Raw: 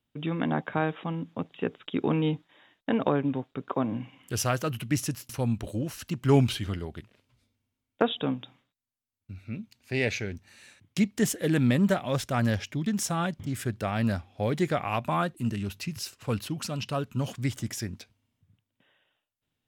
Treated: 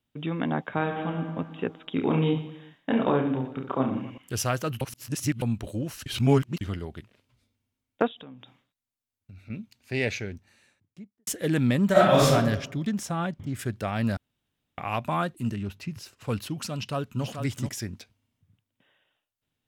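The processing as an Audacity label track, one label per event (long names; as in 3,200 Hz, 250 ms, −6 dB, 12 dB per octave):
0.730000	1.240000	thrown reverb, RT60 1.9 s, DRR 3.5 dB
1.930000	4.180000	reverse bouncing-ball delay first gap 30 ms, each gap 1.3×, echoes 6
4.810000	5.420000	reverse
6.060000	6.610000	reverse
8.070000	9.500000	downward compressor, threshold −42 dBFS
10.030000	11.270000	fade out and dull
11.920000	12.320000	thrown reverb, RT60 0.88 s, DRR −11 dB
12.910000	13.590000	high-shelf EQ 3,100 Hz −8 dB
14.170000	14.780000	fill with room tone
15.530000	16.160000	high-shelf EQ 4,000 Hz → 2,400 Hz −10.5 dB
16.760000	17.690000	single-tap delay 434 ms −7 dB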